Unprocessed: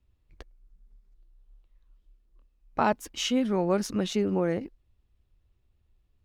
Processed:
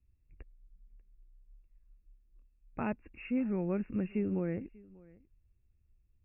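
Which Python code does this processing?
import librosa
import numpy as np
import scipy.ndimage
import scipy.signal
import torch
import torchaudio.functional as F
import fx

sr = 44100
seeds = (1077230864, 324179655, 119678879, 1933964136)

y = fx.brickwall_lowpass(x, sr, high_hz=2800.0)
y = fx.peak_eq(y, sr, hz=910.0, db=-14.5, octaves=2.4)
y = y + 10.0 ** (-23.5 / 20.0) * np.pad(y, (int(591 * sr / 1000.0), 0))[:len(y)]
y = F.gain(torch.from_numpy(y), -1.5).numpy()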